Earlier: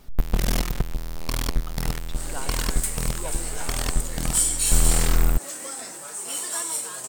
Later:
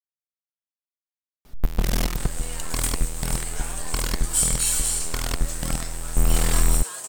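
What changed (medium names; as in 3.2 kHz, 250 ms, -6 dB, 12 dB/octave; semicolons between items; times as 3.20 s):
speech: muted; first sound: entry +1.45 s; second sound: add bass shelf 390 Hz -7.5 dB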